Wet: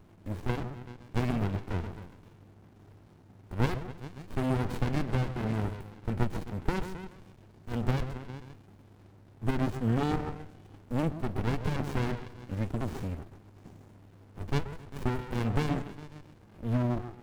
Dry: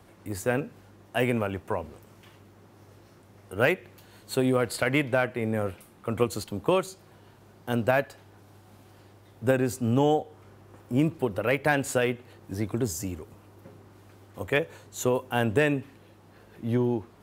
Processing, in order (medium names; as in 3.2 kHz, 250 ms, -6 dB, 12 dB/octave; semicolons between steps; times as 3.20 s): repeats whose band climbs or falls 132 ms, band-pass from 550 Hz, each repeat 0.7 oct, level -6 dB; sliding maximum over 65 samples